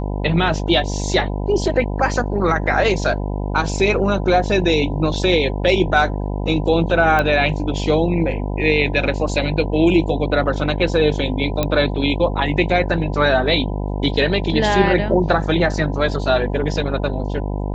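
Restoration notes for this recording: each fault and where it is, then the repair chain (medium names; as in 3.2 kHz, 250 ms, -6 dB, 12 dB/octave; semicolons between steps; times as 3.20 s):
buzz 50 Hz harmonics 20 -23 dBFS
7.19 s: pop -7 dBFS
11.63 s: pop -5 dBFS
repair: de-click; de-hum 50 Hz, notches 20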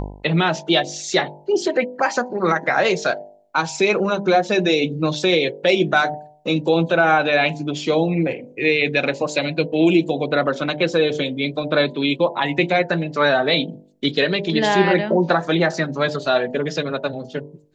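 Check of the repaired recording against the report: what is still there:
11.63 s: pop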